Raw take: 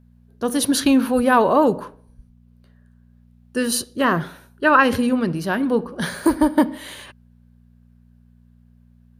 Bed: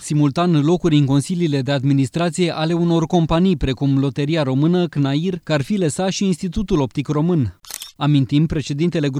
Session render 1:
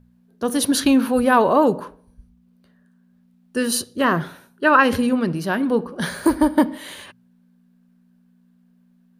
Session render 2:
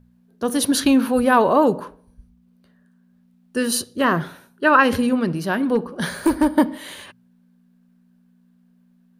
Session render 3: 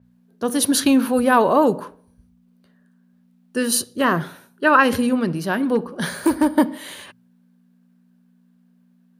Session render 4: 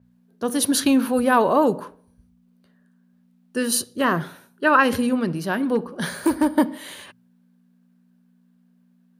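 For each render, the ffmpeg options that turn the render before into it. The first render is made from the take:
-af "bandreject=f=60:t=h:w=4,bandreject=f=120:t=h:w=4"
-filter_complex "[0:a]asettb=1/sr,asplit=3[a][b][c];[a]atrim=end=5.634[d];[b]atrim=start=5.63:end=6.53,asetpts=PTS-STARTPTS,afade=t=in:d=0.004:c=qsin,afade=t=out:st=0.896:d=0.004:c=qsin,volume=11dB,asoftclip=hard,volume=-11dB[e];[c]atrim=start=6.526[f];[d][e]acrossfade=d=0.004:c1=hsin:c2=qsin[g];[g][f]acrossfade=d=0.004:c1=qsin:c2=hsin"
-af "highpass=84,adynamicequalizer=threshold=0.0224:dfrequency=6000:dqfactor=0.7:tfrequency=6000:tqfactor=0.7:attack=5:release=100:ratio=0.375:range=2:mode=boostabove:tftype=highshelf"
-af "volume=-2dB"

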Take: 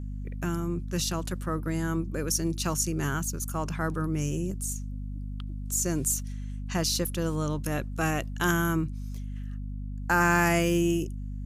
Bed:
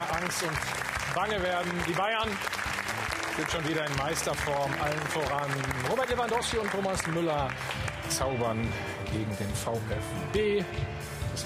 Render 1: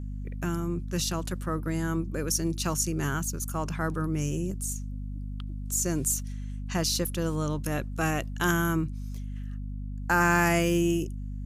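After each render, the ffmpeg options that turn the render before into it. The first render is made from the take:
-af anull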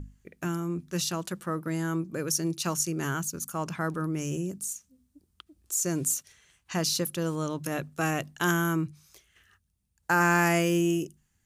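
-af "bandreject=f=50:t=h:w=6,bandreject=f=100:t=h:w=6,bandreject=f=150:t=h:w=6,bandreject=f=200:t=h:w=6,bandreject=f=250:t=h:w=6"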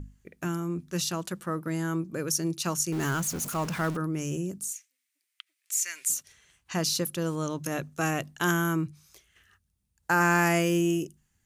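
-filter_complex "[0:a]asettb=1/sr,asplit=3[a][b][c];[a]atrim=end=2.924[d];[b]atrim=start=2.92:end=3.97,asetpts=PTS-STARTPTS,afade=t=in:d=0.004:c=qsin,afade=t=out:st=1.046:d=0.004:c=qsin,aeval=exprs='val(0)+0.5*0.0211*sgn(val(0))':c=same[e];[c]atrim=start=3.966[f];[d][e]acrossfade=d=0.004:c1=hsin:c2=qsin[g];[g][f]acrossfade=d=0.004:c1=qsin:c2=hsin,asettb=1/sr,asplit=3[h][i][j];[h]atrim=end=4.734[k];[i]atrim=start=4.73:end=6.1,asetpts=PTS-STARTPTS,afade=t=in:d=0.004:c=qsin,afade=t=out:st=1.366:d=0.004:c=qsin,highpass=f=2.1k:t=q:w=4[l];[j]atrim=start=6.096[m];[k][l]acrossfade=d=0.004:c1=hsin:c2=qsin[n];[n][m]acrossfade=d=0.004:c1=qsin:c2=hsin,asettb=1/sr,asplit=3[o][p][q];[o]atrim=end=7.434[r];[p]atrim=start=7.43:end=8.09,asetpts=PTS-STARTPTS,afade=t=in:d=0.004:c=qsin,afade=t=out:st=0.656:d=0.004:c=qsin,equalizer=f=6.3k:t=o:w=0.22:g=6[s];[q]atrim=start=8.086[t];[r][s]acrossfade=d=0.004:c1=hsin:c2=qsin[u];[u][t]acrossfade=d=0.004:c1=qsin:c2=hsin"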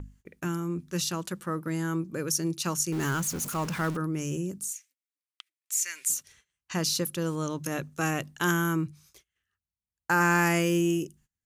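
-af "agate=range=-21dB:threshold=-56dB:ratio=16:detection=peak,equalizer=f=680:w=6.6:g=-5.5"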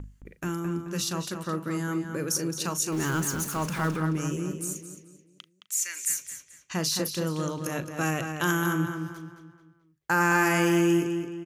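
-filter_complex "[0:a]asplit=2[a][b];[b]adelay=38,volume=-13.5dB[c];[a][c]amix=inputs=2:normalize=0,asplit=2[d][e];[e]adelay=217,lowpass=f=4.5k:p=1,volume=-6.5dB,asplit=2[f][g];[g]adelay=217,lowpass=f=4.5k:p=1,volume=0.42,asplit=2[h][i];[i]adelay=217,lowpass=f=4.5k:p=1,volume=0.42,asplit=2[j][k];[k]adelay=217,lowpass=f=4.5k:p=1,volume=0.42,asplit=2[l][m];[m]adelay=217,lowpass=f=4.5k:p=1,volume=0.42[n];[f][h][j][l][n]amix=inputs=5:normalize=0[o];[d][o]amix=inputs=2:normalize=0"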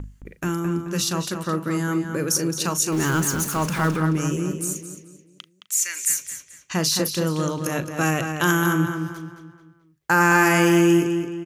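-af "volume=6dB"

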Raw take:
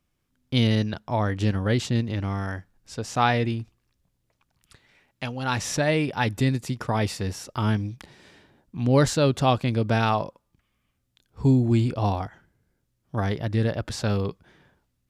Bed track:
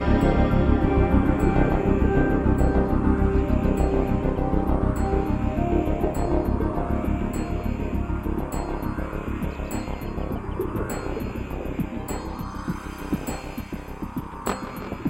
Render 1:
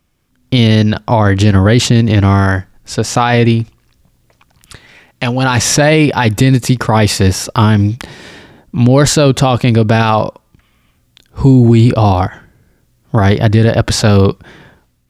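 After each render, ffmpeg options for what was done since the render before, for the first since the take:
-af "dynaudnorm=f=130:g=7:m=7dB,alimiter=level_in=12dB:limit=-1dB:release=50:level=0:latency=1"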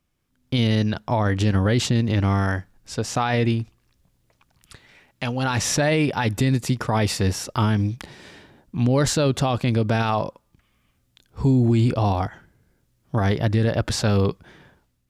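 -af "volume=-11dB"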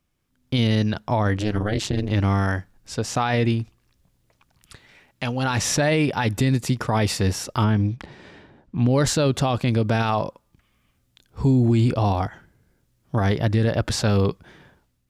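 -filter_complex "[0:a]asplit=3[a][b][c];[a]afade=t=out:st=1.36:d=0.02[d];[b]tremolo=f=210:d=0.947,afade=t=in:st=1.36:d=0.02,afade=t=out:st=2.1:d=0.02[e];[c]afade=t=in:st=2.1:d=0.02[f];[d][e][f]amix=inputs=3:normalize=0,asettb=1/sr,asplit=3[g][h][i];[g]atrim=end=7.644[j];[h]atrim=start=7.64:end=8.87,asetpts=PTS-STARTPTS,afade=t=in:d=0.004:c=qsin,afade=t=out:st=1.226:d=0.004:c=qsin,aemphasis=mode=reproduction:type=75fm[k];[i]atrim=start=8.866[l];[j][k]acrossfade=d=0.004:c1=hsin:c2=qsin[m];[m][l]acrossfade=d=0.004:c1=qsin:c2=hsin"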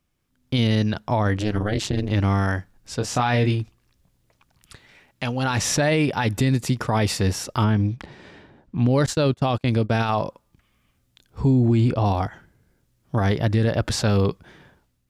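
-filter_complex "[0:a]asettb=1/sr,asplit=3[a][b][c];[a]atrim=end=2.974[d];[b]atrim=start=2.97:end=3.62,asetpts=PTS-STARTPTS,afade=t=in:d=0.004:c=qsin,afade=t=out:st=0.646:d=0.004:c=qsin,asplit=2[e][f];[f]adelay=24,volume=-7dB[g];[e][g]amix=inputs=2:normalize=0,atrim=end_sample=28665[h];[c]atrim=start=3.616[i];[d][h]acrossfade=d=0.004:c1=hsin:c2=qsin[j];[j][i]acrossfade=d=0.004:c1=qsin:c2=hsin,asettb=1/sr,asplit=3[k][l][m];[k]atrim=end=9.064[n];[l]atrim=start=9.06:end=10.15,asetpts=PTS-STARTPTS,afade=t=in:d=0.004:c=qsin,afade=t=out:st=1.086:d=0.004:c=qsin,agate=range=-26dB:threshold=-24dB:ratio=16:release=100:detection=peak[o];[m]atrim=start=10.146[p];[n][o]acrossfade=d=0.004:c1=hsin:c2=qsin[q];[q][p]acrossfade=d=0.004:c1=qsin:c2=hsin,asettb=1/sr,asplit=3[r][s][t];[r]atrim=end=11.404[u];[s]atrim=start=11.4:end=12.06,asetpts=PTS-STARTPTS,afade=t=in:d=0.004:c=qsin,afade=t=out:st=0.656:d=0.004:c=qsin,highshelf=f=4.4k:g=-7.5[v];[t]atrim=start=12.056[w];[u][v]acrossfade=d=0.004:c1=hsin:c2=qsin[x];[x][w]acrossfade=d=0.004:c1=qsin:c2=hsin"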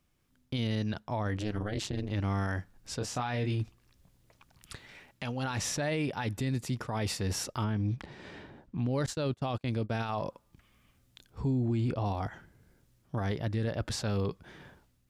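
-af "areverse,acompressor=threshold=-26dB:ratio=6,areverse,alimiter=limit=-23.5dB:level=0:latency=1:release=413"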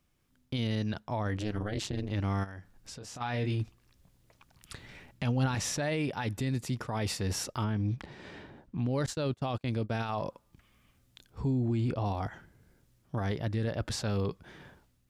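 -filter_complex "[0:a]asplit=3[a][b][c];[a]afade=t=out:st=2.43:d=0.02[d];[b]acompressor=threshold=-41dB:ratio=8:attack=3.2:release=140:knee=1:detection=peak,afade=t=in:st=2.43:d=0.02,afade=t=out:st=3.2:d=0.02[e];[c]afade=t=in:st=3.2:d=0.02[f];[d][e][f]amix=inputs=3:normalize=0,asettb=1/sr,asplit=3[g][h][i];[g]atrim=end=4.774[j];[h]atrim=start=4.77:end=5.55,asetpts=PTS-STARTPTS,afade=t=in:d=0.004:c=qsin,afade=t=out:st=0.776:d=0.004:c=qsin,lowshelf=f=280:g=10.5[k];[i]atrim=start=5.546[l];[j][k]acrossfade=d=0.004:c1=hsin:c2=qsin[m];[m][l]acrossfade=d=0.004:c1=qsin:c2=hsin"

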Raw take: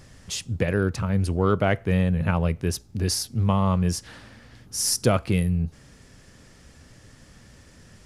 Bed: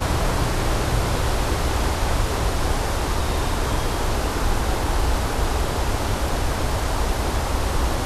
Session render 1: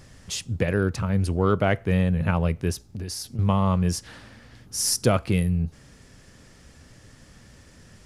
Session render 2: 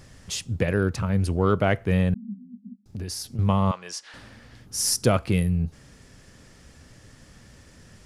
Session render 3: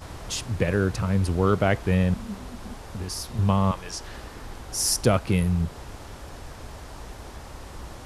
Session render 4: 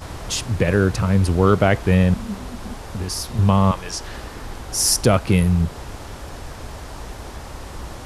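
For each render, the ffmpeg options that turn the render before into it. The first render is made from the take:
-filter_complex "[0:a]asettb=1/sr,asplit=3[a][b][c];[a]atrim=end=2.724[d];[b]atrim=start=2.72:end=3.39,asetpts=PTS-STARTPTS,afade=t=in:d=0.004:c=qsin,afade=t=out:st=0.666:d=0.004:c=qsin,acompressor=threshold=-29dB:ratio=6:attack=3.2:release=140:knee=1:detection=peak[e];[c]atrim=start=3.386[f];[d][e]acrossfade=d=0.004:c1=hsin:c2=qsin[g];[g][f]acrossfade=d=0.004:c1=qsin:c2=hsin"
-filter_complex "[0:a]asettb=1/sr,asplit=3[a][b][c];[a]atrim=end=2.144[d];[b]atrim=start=2.14:end=2.86,asetpts=PTS-STARTPTS,afade=t=in:d=0.004:c=qsin,afade=t=out:st=0.716:d=0.004:c=qsin,asuperpass=centerf=220:order=12:qfactor=3.7[e];[c]atrim=start=2.856[f];[d][e]acrossfade=d=0.004:c1=hsin:c2=qsin[g];[g][f]acrossfade=d=0.004:c1=qsin:c2=hsin,asettb=1/sr,asplit=3[h][i][j];[h]atrim=end=3.714[k];[i]atrim=start=3.71:end=4.14,asetpts=PTS-STARTPTS,afade=t=in:d=0.004:c=qsin,afade=t=out:st=0.426:d=0.004:c=qsin,highpass=800,lowpass=6.8k[l];[j]atrim=start=4.136[m];[k][l]acrossfade=d=0.004:c1=hsin:c2=qsin[n];[n][m]acrossfade=d=0.004:c1=qsin:c2=hsin"
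-filter_complex "[1:a]volume=-18dB[a];[0:a][a]amix=inputs=2:normalize=0"
-af "volume=6dB,alimiter=limit=-3dB:level=0:latency=1"

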